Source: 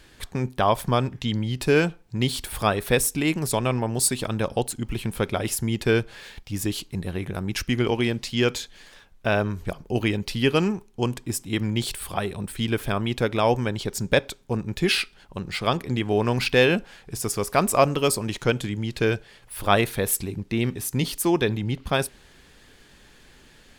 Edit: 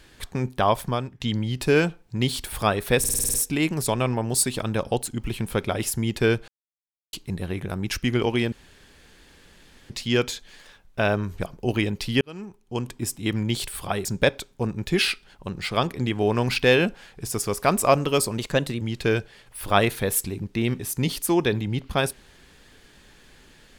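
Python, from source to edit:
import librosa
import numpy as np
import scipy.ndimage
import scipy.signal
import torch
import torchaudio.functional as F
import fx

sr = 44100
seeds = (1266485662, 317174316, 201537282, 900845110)

y = fx.edit(x, sr, fx.fade_out_to(start_s=0.71, length_s=0.49, floor_db=-14.0),
    fx.stutter(start_s=2.99, slice_s=0.05, count=8),
    fx.silence(start_s=6.13, length_s=0.65),
    fx.insert_room_tone(at_s=8.17, length_s=1.38),
    fx.fade_in_span(start_s=10.48, length_s=0.87),
    fx.cut(start_s=12.32, length_s=1.63),
    fx.speed_span(start_s=18.28, length_s=0.49, speed=1.14), tone=tone)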